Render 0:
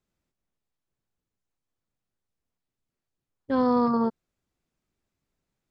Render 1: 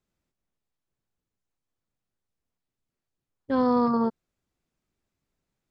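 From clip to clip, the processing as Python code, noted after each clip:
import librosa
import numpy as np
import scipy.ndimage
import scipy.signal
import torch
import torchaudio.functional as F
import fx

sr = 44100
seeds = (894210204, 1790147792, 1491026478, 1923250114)

y = x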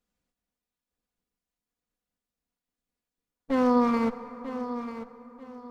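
y = fx.lower_of_two(x, sr, delay_ms=4.1)
y = fx.echo_feedback(y, sr, ms=942, feedback_pct=28, wet_db=-11.5)
y = fx.rev_plate(y, sr, seeds[0], rt60_s=4.4, hf_ratio=0.45, predelay_ms=0, drr_db=12.5)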